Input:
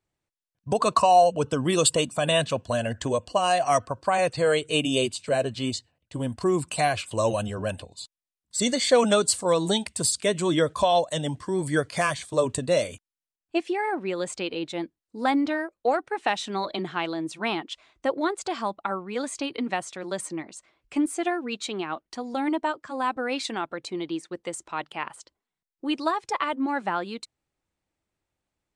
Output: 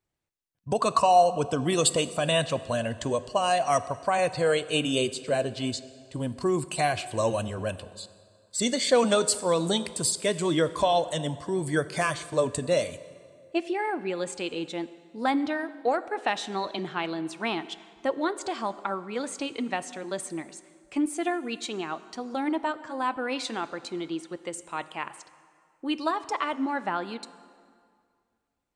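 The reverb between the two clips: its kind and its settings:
dense smooth reverb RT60 2.1 s, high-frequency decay 0.75×, DRR 14 dB
level −2 dB

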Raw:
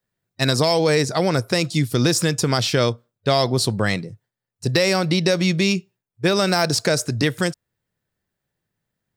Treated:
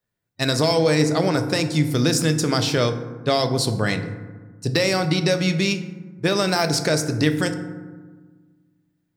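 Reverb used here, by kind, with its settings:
feedback delay network reverb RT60 1.4 s, low-frequency decay 1.45×, high-frequency decay 0.4×, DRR 7 dB
level −2 dB

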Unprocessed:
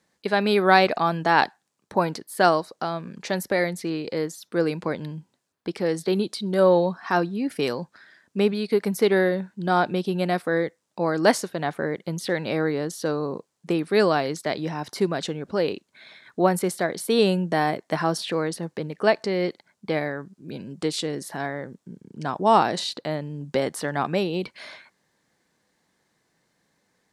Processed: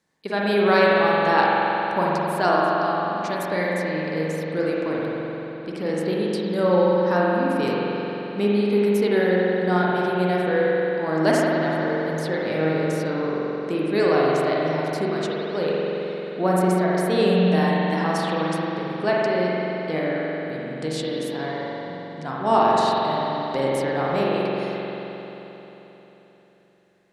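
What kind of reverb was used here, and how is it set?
spring reverb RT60 3.8 s, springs 44 ms, chirp 50 ms, DRR −5.5 dB
level −4.5 dB

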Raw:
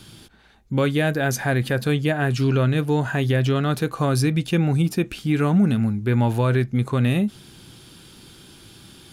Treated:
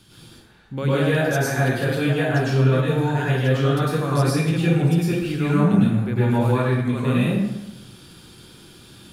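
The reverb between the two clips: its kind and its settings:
dense smooth reverb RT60 1 s, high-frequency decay 0.65×, pre-delay 90 ms, DRR −8.5 dB
level −8 dB

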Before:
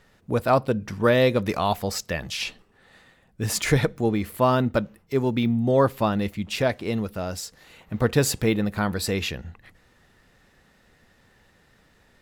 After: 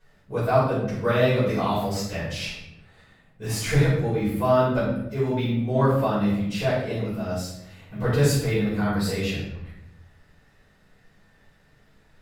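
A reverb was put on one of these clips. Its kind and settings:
rectangular room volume 240 cubic metres, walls mixed, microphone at 5.1 metres
level −15 dB

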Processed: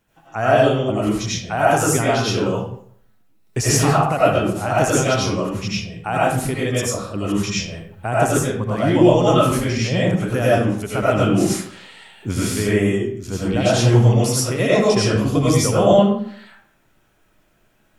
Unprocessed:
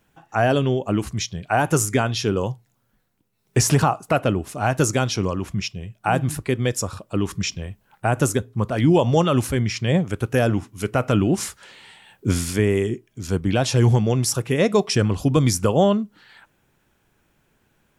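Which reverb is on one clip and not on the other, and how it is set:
comb and all-pass reverb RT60 0.61 s, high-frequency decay 0.7×, pre-delay 55 ms, DRR −8 dB
level −4.5 dB

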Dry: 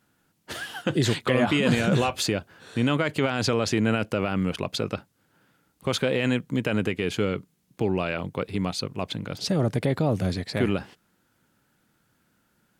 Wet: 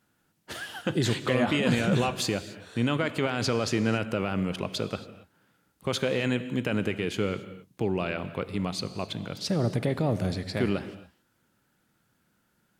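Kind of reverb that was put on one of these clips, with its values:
reverb whose tail is shaped and stops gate 300 ms flat, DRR 12 dB
level −3 dB

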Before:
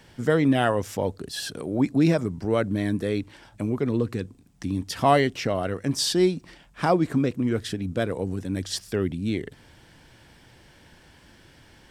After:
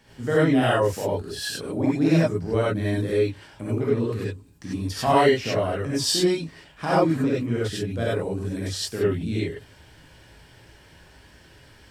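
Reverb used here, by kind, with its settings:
reverb whose tail is shaped and stops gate 120 ms rising, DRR −8 dB
level −6.5 dB

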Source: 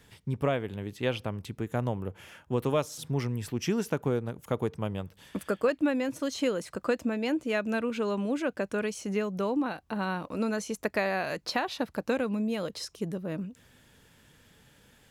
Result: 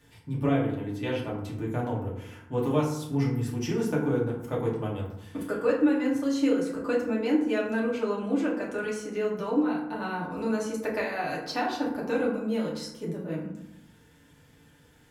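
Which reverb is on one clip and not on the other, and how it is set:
feedback delay network reverb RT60 0.82 s, low-frequency decay 1.35×, high-frequency decay 0.45×, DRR −5.5 dB
level −6.5 dB

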